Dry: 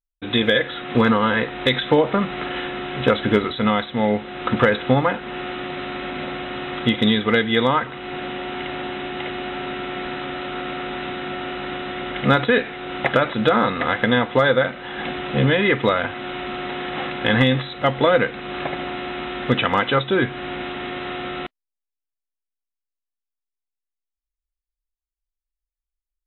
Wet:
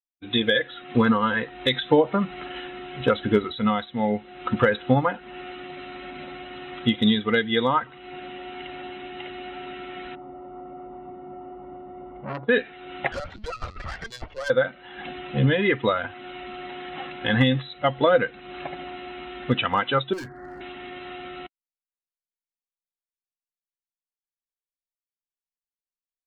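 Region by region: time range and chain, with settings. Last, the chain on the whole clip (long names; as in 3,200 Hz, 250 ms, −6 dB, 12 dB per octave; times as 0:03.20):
0:10.15–0:12.49: Savitzky-Golay smoothing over 65 samples + saturating transformer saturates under 1,900 Hz
0:13.12–0:14.50: linear-prediction vocoder at 8 kHz pitch kept + tube saturation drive 21 dB, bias 0.55
0:20.13–0:20.61: Butterworth low-pass 2,000 Hz 96 dB per octave + gain into a clipping stage and back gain 25.5 dB
whole clip: spectral dynamics exaggerated over time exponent 1.5; dynamic equaliser 2,200 Hz, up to −4 dB, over −43 dBFS, Q 4.9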